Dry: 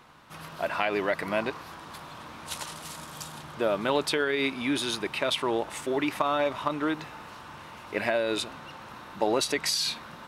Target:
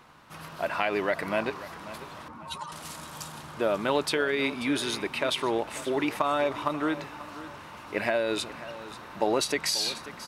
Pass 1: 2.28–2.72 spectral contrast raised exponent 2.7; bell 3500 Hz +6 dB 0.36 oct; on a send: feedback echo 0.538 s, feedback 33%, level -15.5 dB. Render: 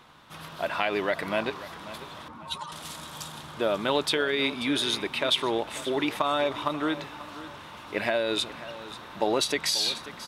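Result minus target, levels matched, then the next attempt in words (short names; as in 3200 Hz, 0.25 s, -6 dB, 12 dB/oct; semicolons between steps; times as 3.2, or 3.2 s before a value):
4000 Hz band +3.5 dB
2.28–2.72 spectral contrast raised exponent 2.7; bell 3500 Hz -2 dB 0.36 oct; on a send: feedback echo 0.538 s, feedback 33%, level -15.5 dB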